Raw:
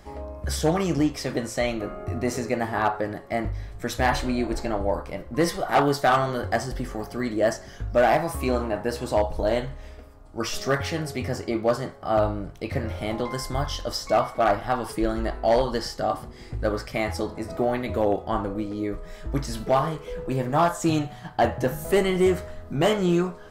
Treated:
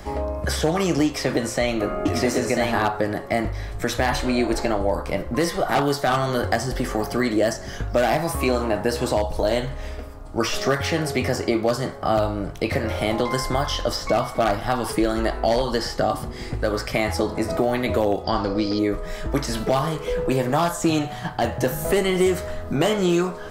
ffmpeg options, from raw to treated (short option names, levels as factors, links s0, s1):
-filter_complex "[0:a]asettb=1/sr,asplit=3[s0][s1][s2];[s0]atrim=end=1.064[s3];[s1]atrim=start=1.06:end=2.86,asetpts=PTS-STARTPTS,afade=t=in:d=0.004:c=qsin,afade=t=out:st=1.796:d=0.004:c=qsin,aecho=1:1:993:0.668,atrim=end_sample=79380[s4];[s2]atrim=start=2.856[s5];[s3][s4]acrossfade=d=0.004:c1=hsin:c2=qsin[s6];[s6][s5]acrossfade=d=0.004:c1=qsin:c2=hsin,asettb=1/sr,asplit=3[s7][s8][s9];[s7]atrim=end=18.244[s10];[s8]atrim=start=18.24:end=18.79,asetpts=PTS-STARTPTS,afade=t=in:d=0.004:c=qsin,afade=t=out:st=0.546:d=0.004:c=qsin,lowpass=f=4900:t=q:w=14[s11];[s9]atrim=start=18.786[s12];[s10][s11]acrossfade=d=0.004:c1=hsin:c2=qsin[s13];[s13][s12]acrossfade=d=0.004:c1=qsin:c2=hsin,acrossover=split=310|3200[s14][s15][s16];[s14]acompressor=threshold=0.0141:ratio=4[s17];[s15]acompressor=threshold=0.0282:ratio=4[s18];[s16]acompressor=threshold=0.00794:ratio=4[s19];[s17][s18][s19]amix=inputs=3:normalize=0,alimiter=level_in=7.94:limit=0.891:release=50:level=0:latency=1,volume=0.422"